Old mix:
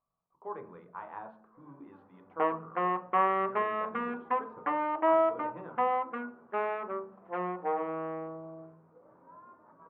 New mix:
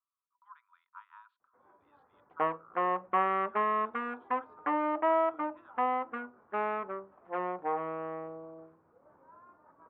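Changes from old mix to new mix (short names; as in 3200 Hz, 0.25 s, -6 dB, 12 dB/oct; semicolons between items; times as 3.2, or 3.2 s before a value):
speech: add rippled Chebyshev high-pass 950 Hz, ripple 9 dB; reverb: off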